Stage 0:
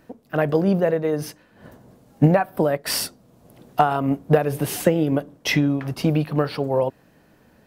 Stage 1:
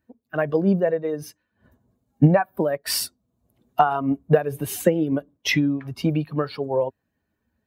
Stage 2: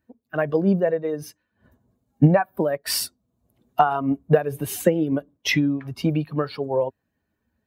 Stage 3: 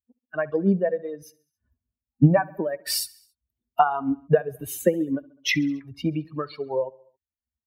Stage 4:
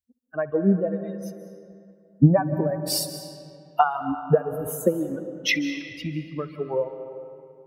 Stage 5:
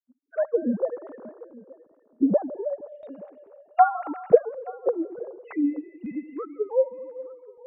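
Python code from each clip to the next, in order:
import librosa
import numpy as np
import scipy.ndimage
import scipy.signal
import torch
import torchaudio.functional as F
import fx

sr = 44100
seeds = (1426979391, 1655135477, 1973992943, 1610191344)

y1 = fx.bin_expand(x, sr, power=1.5)
y1 = scipy.signal.sosfilt(scipy.signal.butter(2, 61.0, 'highpass', fs=sr, output='sos'), y1)
y1 = y1 * 10.0 ** (1.5 / 20.0)
y2 = y1
y3 = fx.bin_expand(y2, sr, power=1.5)
y3 = fx.echo_feedback(y3, sr, ms=68, feedback_pct=60, wet_db=-23)
y4 = fx.phaser_stages(y3, sr, stages=2, low_hz=100.0, high_hz=4200.0, hz=0.49, feedback_pct=25)
y4 = fx.rev_freeverb(y4, sr, rt60_s=2.5, hf_ratio=0.65, predelay_ms=120, drr_db=9.5)
y5 = fx.sine_speech(y4, sr)
y5 = fx.filter_lfo_lowpass(y5, sr, shape='square', hz=0.33, low_hz=610.0, high_hz=1600.0, q=0.76)
y5 = y5 + 10.0 ** (-22.0 / 20.0) * np.pad(y5, (int(875 * sr / 1000.0), 0))[:len(y5)]
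y5 = y5 * 10.0 ** (-1.0 / 20.0)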